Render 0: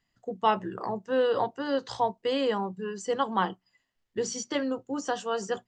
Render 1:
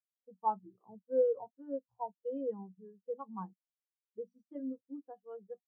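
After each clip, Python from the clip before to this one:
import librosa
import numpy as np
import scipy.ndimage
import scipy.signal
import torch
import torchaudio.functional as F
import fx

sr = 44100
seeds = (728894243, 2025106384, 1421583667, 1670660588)

y = fx.bass_treble(x, sr, bass_db=6, treble_db=-13)
y = fx.spectral_expand(y, sr, expansion=2.5)
y = y * librosa.db_to_amplitude(-8.0)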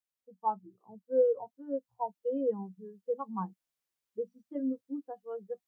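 y = fx.rider(x, sr, range_db=3, speed_s=2.0)
y = y * librosa.db_to_amplitude(4.0)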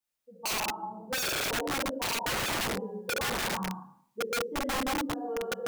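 y = fx.spec_trails(x, sr, decay_s=0.59)
y = fx.rev_gated(y, sr, seeds[0], gate_ms=400, shape='falling', drr_db=-4.5)
y = (np.mod(10.0 ** (26.0 / 20.0) * y + 1.0, 2.0) - 1.0) / 10.0 ** (26.0 / 20.0)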